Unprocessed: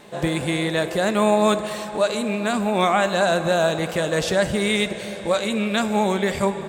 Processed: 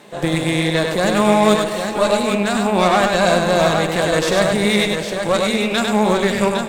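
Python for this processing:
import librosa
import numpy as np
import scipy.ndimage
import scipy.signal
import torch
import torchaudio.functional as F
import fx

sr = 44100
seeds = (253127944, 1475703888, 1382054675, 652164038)

y = scipy.signal.sosfilt(scipy.signal.butter(2, 120.0, 'highpass', fs=sr, output='sos'), x)
y = fx.cheby_harmonics(y, sr, harmonics=(6,), levels_db=(-19,), full_scale_db=-6.0)
y = fx.echo_multitap(y, sr, ms=(99, 807), db=(-4.0, -6.5))
y = y * 10.0 ** (2.0 / 20.0)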